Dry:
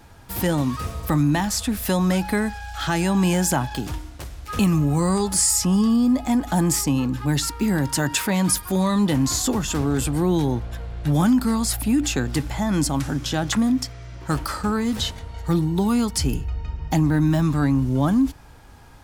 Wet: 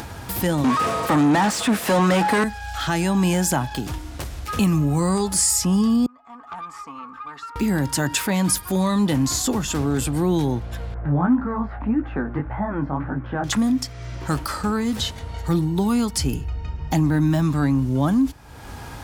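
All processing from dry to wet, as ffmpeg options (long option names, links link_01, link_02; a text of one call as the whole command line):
ffmpeg -i in.wav -filter_complex "[0:a]asettb=1/sr,asplit=3[link_01][link_02][link_03];[link_01]atrim=end=0.644[link_04];[link_02]atrim=start=0.64:end=2.44,asetpts=PTS-STARTPTS,afade=type=in:duration=0.004:curve=qsin,afade=type=out:start_time=1.796:duration=0.004:curve=qsin,highpass=140,asplit=2[link_05][link_06];[link_06]highpass=frequency=720:poles=1,volume=28dB,asoftclip=type=tanh:threshold=-9.5dB[link_07];[link_05][link_07]amix=inputs=2:normalize=0,lowpass=frequency=1300:poles=1,volume=-6dB,equalizer=frequency=8400:width_type=o:width=0.64:gain=5[link_08];[link_03]atrim=start=2.436[link_09];[link_04][link_08]acrossfade=duration=0.004:curve1=hsin:curve2=qsin[link_10];[link_10][link_09]acrossfade=duration=0.004:curve1=qsin:curve2=hsin,asettb=1/sr,asplit=3[link_11][link_12][link_13];[link_11]atrim=end=6.064[link_14];[link_12]atrim=start=6.06:end=7.56,asetpts=PTS-STARTPTS,afade=type=in:duration=0.004:curve=qsin,afade=type=out:start_time=1.496:duration=0.004:curve=qsin,bandpass=frequency=1200:width_type=q:width=15,aecho=1:1:4.4:0.57,atrim=end_sample=66150,aeval=exprs='(tanh(70.8*val(0)+0.35)-tanh(0.35))/70.8':channel_layout=same[link_15];[link_13]atrim=start=7.556[link_16];[link_14][link_15]acrossfade=duration=0.004:curve1=hsin:curve2=qsin[link_17];[link_17][link_16]acrossfade=duration=0.004:curve1=qsin:curve2=hsin,asettb=1/sr,asplit=3[link_18][link_19][link_20];[link_18]atrim=end=10.944[link_21];[link_19]atrim=start=10.94:end=13.44,asetpts=PTS-STARTPTS,afade=type=in:duration=0.004:curve=qsin,afade=type=out:start_time=2.496:duration=0.004:curve=qsin,lowpass=frequency=1700:width=0.5412,lowpass=frequency=1700:width=1.3066,equalizer=frequency=1100:width_type=o:width=2.6:gain=4.5,flanger=delay=15:depth=7:speed=1.8[link_22];[link_20]atrim=start=13.436[link_23];[link_21][link_22]acrossfade=duration=0.004:curve1=hsin:curve2=qsin[link_24];[link_24][link_23]acrossfade=duration=0.004:curve1=qsin:curve2=hsin,highpass=49,acompressor=mode=upward:threshold=-23dB:ratio=2.5" out.wav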